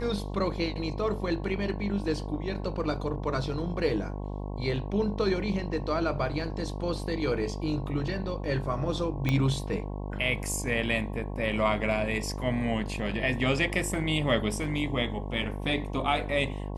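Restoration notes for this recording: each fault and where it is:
buzz 50 Hz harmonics 22 -35 dBFS
9.29 pop -14 dBFS

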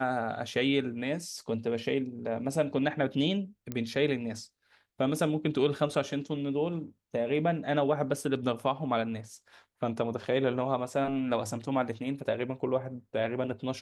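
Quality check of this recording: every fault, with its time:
3.72 pop -20 dBFS

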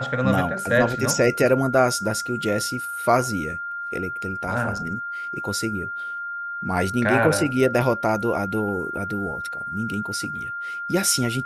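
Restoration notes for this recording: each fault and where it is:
tone 1400 Hz -28 dBFS

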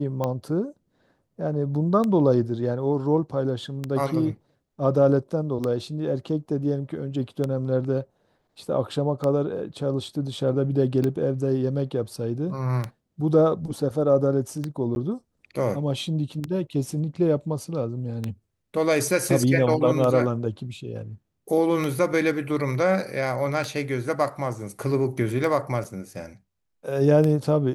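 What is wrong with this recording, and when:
tick 33 1/3 rpm -14 dBFS
14.95–14.96 gap 11 ms
25.84–25.85 gap 5.6 ms

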